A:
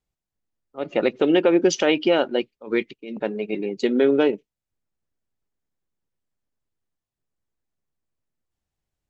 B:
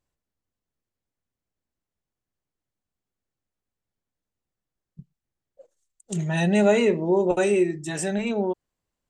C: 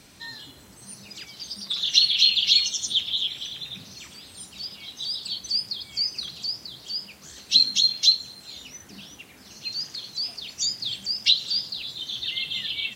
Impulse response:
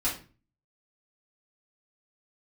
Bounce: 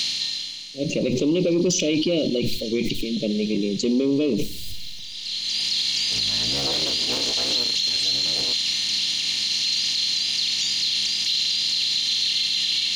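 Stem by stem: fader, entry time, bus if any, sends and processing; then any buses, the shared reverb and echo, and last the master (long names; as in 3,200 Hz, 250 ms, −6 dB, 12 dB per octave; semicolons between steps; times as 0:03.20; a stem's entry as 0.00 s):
−1.0 dB, 0.00 s, send −19 dB, elliptic band-stop filter 580–2,400 Hz; bass and treble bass +14 dB, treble +14 dB; level that may fall only so fast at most 40 dB per second
−11.0 dB, 0.00 s, no send, sub-harmonics by changed cycles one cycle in 3, inverted
−6.0 dB, 0.00 s, no send, compressor on every frequency bin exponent 0.2; automatic ducking −16 dB, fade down 0.75 s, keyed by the first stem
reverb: on, RT60 0.35 s, pre-delay 3 ms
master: soft clipping −3 dBFS, distortion −29 dB; brickwall limiter −14 dBFS, peak gain reduction 8.5 dB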